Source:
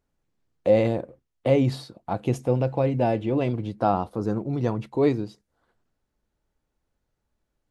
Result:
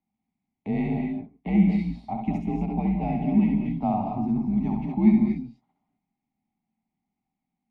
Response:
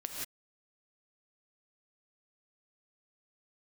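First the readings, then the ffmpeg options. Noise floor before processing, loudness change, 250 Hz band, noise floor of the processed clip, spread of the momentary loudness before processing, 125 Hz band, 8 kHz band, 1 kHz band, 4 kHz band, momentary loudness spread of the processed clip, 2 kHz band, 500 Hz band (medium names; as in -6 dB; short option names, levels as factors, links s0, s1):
-79 dBFS, 0.0 dB, +5.5 dB, -85 dBFS, 10 LU, -1.5 dB, no reading, -2.5 dB, under -10 dB, 11 LU, -4.0 dB, -13.0 dB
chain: -filter_complex "[0:a]asplit=3[s0][s1][s2];[s0]bandpass=f=300:t=q:w=8,volume=1[s3];[s1]bandpass=f=870:t=q:w=8,volume=0.501[s4];[s2]bandpass=f=2240:t=q:w=8,volume=0.355[s5];[s3][s4][s5]amix=inputs=3:normalize=0,afreqshift=-80,asplit=2[s6][s7];[1:a]atrim=start_sample=2205,adelay=68[s8];[s7][s8]afir=irnorm=-1:irlink=0,volume=0.841[s9];[s6][s9]amix=inputs=2:normalize=0,volume=2.51"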